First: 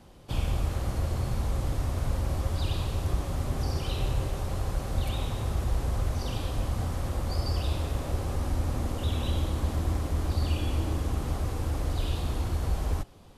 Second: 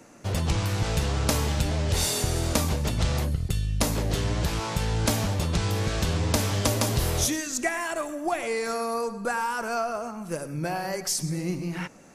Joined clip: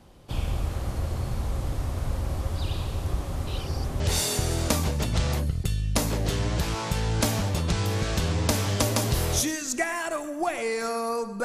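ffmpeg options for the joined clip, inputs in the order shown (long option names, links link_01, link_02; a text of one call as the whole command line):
ffmpeg -i cue0.wav -i cue1.wav -filter_complex "[0:a]apad=whole_dur=11.44,atrim=end=11.44,asplit=2[link_01][link_02];[link_01]atrim=end=3.472[link_03];[link_02]atrim=start=3.468:end=4.002,asetpts=PTS-STARTPTS,areverse[link_04];[1:a]atrim=start=1.848:end=9.29[link_05];[link_03][link_04]acrossfade=duration=0.004:curve1=hsin:curve2=hsin[link_06];[link_06][link_05]acrossfade=duration=0.004:curve1=hsin:curve2=hsin" out.wav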